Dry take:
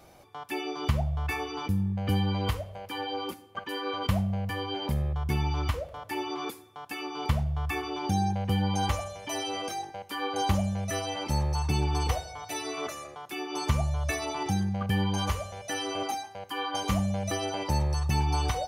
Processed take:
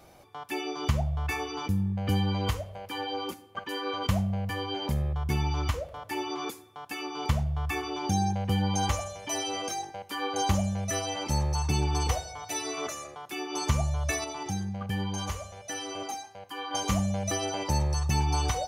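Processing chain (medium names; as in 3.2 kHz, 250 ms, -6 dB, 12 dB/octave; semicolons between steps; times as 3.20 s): dynamic bell 6.6 kHz, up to +7 dB, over -57 dBFS, Q 2.2; 14.24–16.71 s: flange 1.3 Hz, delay 6.1 ms, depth 1.5 ms, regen -90%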